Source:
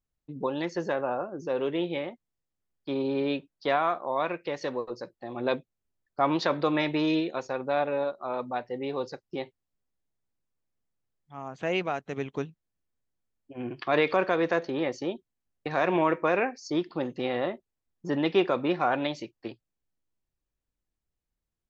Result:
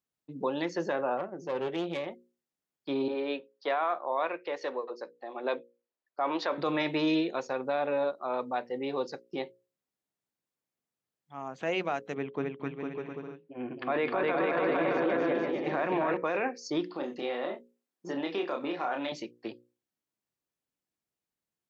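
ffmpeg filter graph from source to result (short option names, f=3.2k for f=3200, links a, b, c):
-filter_complex "[0:a]asettb=1/sr,asplit=3[a][b][c];[a]atrim=end=1.174[d];[b]atrim=start=1.17:end=2.07,asetpts=PTS-STARTPTS,afade=t=in:d=0.004:c=qsin,afade=t=out:st=0.896:d=0.004:c=qsin,aecho=1:1:5.3:0.33,atrim=end_sample=39690,aeval=exprs='(tanh(17.8*val(0)+0.65)-tanh(0.65))/17.8':c=same[e];[c]atrim=start=2.066[f];[d][e]acrossfade=d=0.004:c1=hsin:c2=qsin[g];[g][f]acrossfade=d=0.004:c1=qsin:c2=hsin,asettb=1/sr,asplit=3[h][i][j];[h]atrim=end=3.084[k];[i]atrim=start=3.08:end=6.58,asetpts=PTS-STARTPTS,afade=t=in:d=0.004:c=qsin,afade=t=out:st=3.496:d=0.004:c=qsin,highpass=390,highshelf=f=4.7k:g=-10.5[l];[j]atrim=start=6.576[m];[k][l]acrossfade=d=0.004:c1=hsin:c2=qsin[n];[n][m]acrossfade=d=0.004:c1=qsin:c2=hsin,asettb=1/sr,asplit=3[o][p][q];[o]atrim=end=12.144[r];[p]atrim=start=12.14:end=16.17,asetpts=PTS-STARTPTS,afade=t=in:d=0.004:c=qsin,afade=t=out:st=4.026:d=0.004:c=qsin,lowpass=2.5k,aecho=1:1:260|455|601.2|710.9|793.2|854.9|901.2|935.9:0.794|0.631|0.501|0.398|0.316|0.251|0.2|0.158,atrim=end_sample=177723[s];[q]atrim=start=16.166[t];[r][s]acrossfade=d=0.004:c1=hsin:c2=qsin[u];[u][t]acrossfade=d=0.004:c1=qsin:c2=hsin,asettb=1/sr,asplit=3[v][w][x];[v]atrim=end=16.914[y];[w]atrim=start=16.91:end=19.12,asetpts=PTS-STARTPTS,afade=t=in:d=0.004:c=qsin,afade=t=out:st=2.206:d=0.004:c=qsin,highpass=240,acompressor=threshold=-31dB:ratio=3:attack=3.2:release=140:knee=1:detection=peak,asplit=2[z][aa];[aa]adelay=29,volume=-4dB[ab];[z][ab]amix=inputs=2:normalize=0,atrim=end_sample=97461[ac];[x]atrim=start=19.116[ad];[y][ac]acrossfade=d=0.004:c1=hsin:c2=qsin[ae];[ae][ad]acrossfade=d=0.004:c1=qsin:c2=hsin,highpass=170,bandreject=f=60:t=h:w=6,bandreject=f=120:t=h:w=6,bandreject=f=180:t=h:w=6,bandreject=f=240:t=h:w=6,bandreject=f=300:t=h:w=6,bandreject=f=360:t=h:w=6,bandreject=f=420:t=h:w=6,bandreject=f=480:t=h:w=6,bandreject=f=540:t=h:w=6,alimiter=limit=-20dB:level=0:latency=1:release=12"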